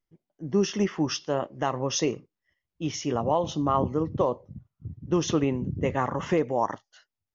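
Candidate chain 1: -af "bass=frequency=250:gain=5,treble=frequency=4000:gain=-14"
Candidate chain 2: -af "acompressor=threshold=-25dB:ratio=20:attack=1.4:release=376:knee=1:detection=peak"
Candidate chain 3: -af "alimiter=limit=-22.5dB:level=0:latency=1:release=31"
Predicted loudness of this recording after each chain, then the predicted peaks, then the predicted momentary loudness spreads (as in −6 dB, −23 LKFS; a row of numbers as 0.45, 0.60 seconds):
−26.0, −34.5, −33.5 LKFS; −11.0, −19.5, −22.5 dBFS; 13, 9, 11 LU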